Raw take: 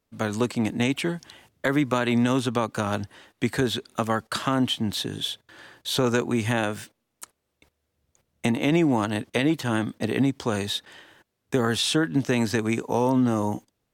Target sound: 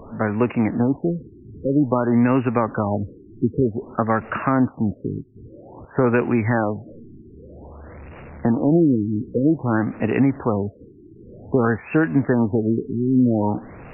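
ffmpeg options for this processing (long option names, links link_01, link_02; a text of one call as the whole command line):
ffmpeg -i in.wav -af "aeval=exprs='val(0)+0.5*0.0158*sgn(val(0))':channel_layout=same,highshelf=frequency=4800:gain=-9,afftfilt=real='re*lt(b*sr/1024,410*pow(2900/410,0.5+0.5*sin(2*PI*0.52*pts/sr)))':imag='im*lt(b*sr/1024,410*pow(2900/410,0.5+0.5*sin(2*PI*0.52*pts/sr)))':win_size=1024:overlap=0.75,volume=4.5dB" out.wav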